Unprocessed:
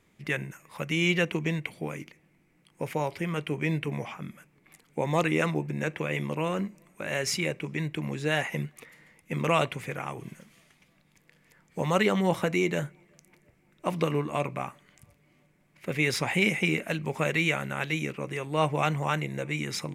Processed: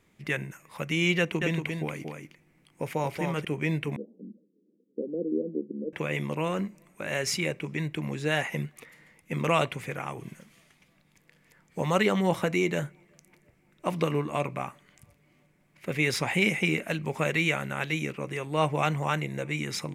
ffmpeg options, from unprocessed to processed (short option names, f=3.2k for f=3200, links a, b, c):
-filter_complex "[0:a]asettb=1/sr,asplit=3[a][b][c];[a]atrim=end=1.184[d];[b]atrim=start=1.18:end=3.45,asetpts=PTS-STARTPTS,afade=t=in:d=0.004:c=qsin,afade=t=out:st=2.266:d=0.004:c=qsin,aecho=1:1:232:0.562,atrim=end_sample=100107[e];[c]atrim=start=3.446[f];[d][e]acrossfade=d=0.004:c1=hsin:c2=qsin[g];[g][f]acrossfade=d=0.004:c1=qsin:c2=hsin,asettb=1/sr,asplit=3[h][i][j];[h]atrim=end=3.964[k];[i]atrim=start=3.96:end=5.93,asetpts=PTS-STARTPTS,afade=t=in:d=0.004:c=qsin,afade=t=out:st=1.966:d=0.004:c=qsin,asuperpass=centerf=310:order=12:qfactor=1[l];[j]atrim=start=5.926[m];[k][l]acrossfade=d=0.004:c1=hsin:c2=qsin[n];[n][m]acrossfade=d=0.004:c1=qsin:c2=hsin"